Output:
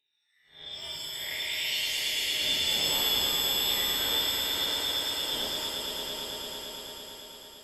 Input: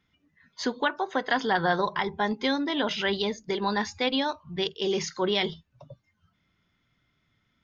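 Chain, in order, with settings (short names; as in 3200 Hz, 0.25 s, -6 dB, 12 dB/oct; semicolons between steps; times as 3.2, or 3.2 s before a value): time blur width 0.18 s; phaser stages 4, 0.29 Hz, lowest notch 130–1200 Hz; on a send: swelling echo 0.112 s, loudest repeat 5, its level -6.5 dB; on the sum: inverted band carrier 3800 Hz; shimmer reverb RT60 1.1 s, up +7 st, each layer -2 dB, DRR 2 dB; gain -3.5 dB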